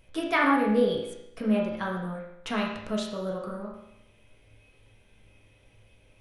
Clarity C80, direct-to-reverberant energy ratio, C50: 6.0 dB, -3.5 dB, 2.5 dB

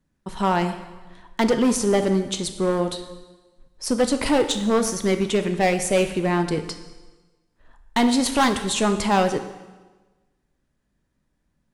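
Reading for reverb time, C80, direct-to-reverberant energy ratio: 1.3 s, 11.5 dB, 7.5 dB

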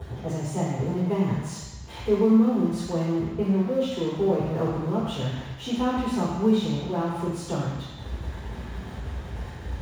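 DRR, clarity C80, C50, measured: -8.0 dB, 2.5 dB, 0.5 dB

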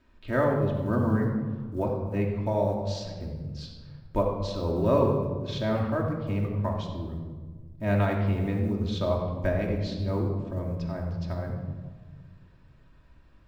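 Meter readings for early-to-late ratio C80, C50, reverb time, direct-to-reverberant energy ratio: 5.0 dB, 3.5 dB, 1.5 s, -1.5 dB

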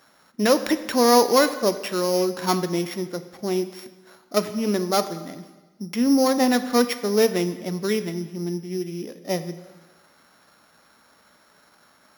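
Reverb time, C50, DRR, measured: 1.3 s, 12.5 dB, 11.0 dB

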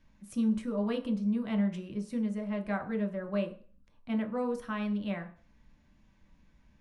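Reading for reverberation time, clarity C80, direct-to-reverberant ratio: 0.40 s, 16.5 dB, 2.0 dB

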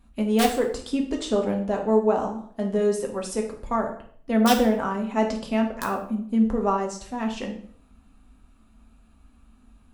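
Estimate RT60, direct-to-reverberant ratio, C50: 0.55 s, 1.0 dB, 8.5 dB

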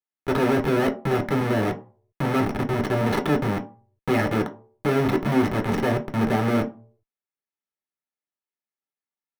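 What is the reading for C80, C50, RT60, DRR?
18.5 dB, 14.5 dB, 0.45 s, 2.5 dB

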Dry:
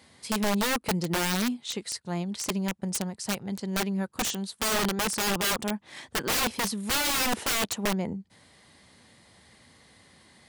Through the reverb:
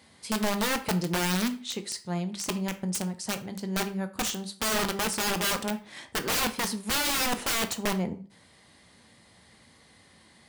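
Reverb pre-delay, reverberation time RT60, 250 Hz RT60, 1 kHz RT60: 13 ms, 0.40 s, 0.45 s, 0.40 s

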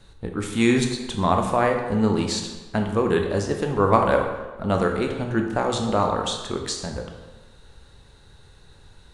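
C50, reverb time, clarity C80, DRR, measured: 5.5 dB, 1.3 s, 7.5 dB, 3.0 dB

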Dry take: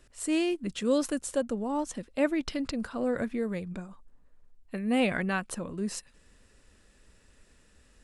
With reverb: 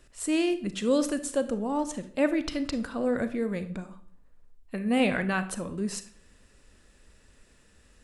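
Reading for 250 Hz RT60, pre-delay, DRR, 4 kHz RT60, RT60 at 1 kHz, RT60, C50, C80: 0.60 s, 31 ms, 11.0 dB, 0.40 s, 0.55 s, 0.55 s, 13.5 dB, 17.0 dB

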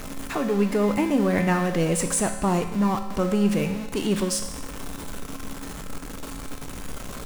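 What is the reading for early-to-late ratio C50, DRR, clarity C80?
8.5 dB, 5.5 dB, 10.5 dB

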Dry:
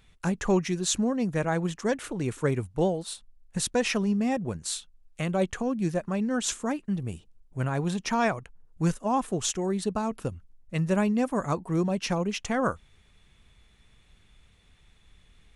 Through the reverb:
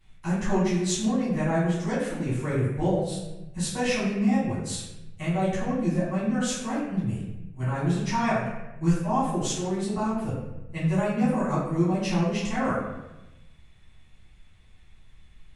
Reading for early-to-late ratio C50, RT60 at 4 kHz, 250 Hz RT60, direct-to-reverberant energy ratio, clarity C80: 0.5 dB, 0.70 s, 1.2 s, -12.0 dB, 3.5 dB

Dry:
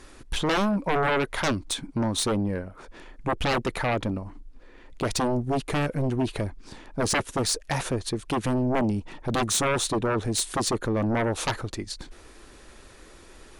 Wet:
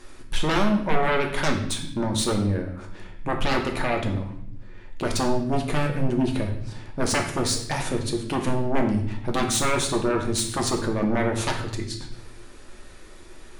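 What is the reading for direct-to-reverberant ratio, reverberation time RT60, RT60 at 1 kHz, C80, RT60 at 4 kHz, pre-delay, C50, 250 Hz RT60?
1.5 dB, 0.65 s, 0.60 s, 11.0 dB, 0.65 s, 3 ms, 7.5 dB, 1.1 s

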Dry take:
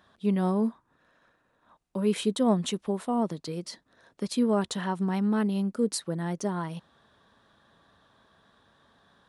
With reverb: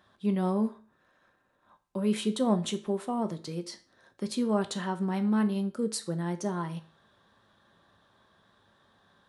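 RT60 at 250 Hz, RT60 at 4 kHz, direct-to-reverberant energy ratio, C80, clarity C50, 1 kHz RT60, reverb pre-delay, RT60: 0.40 s, 0.40 s, 7.5 dB, 19.5 dB, 15.5 dB, 0.40 s, 4 ms, 0.40 s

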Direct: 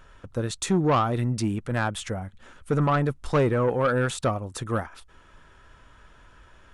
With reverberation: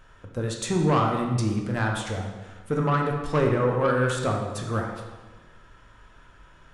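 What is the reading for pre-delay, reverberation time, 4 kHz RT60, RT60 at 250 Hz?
13 ms, 1.3 s, 1.0 s, 1.4 s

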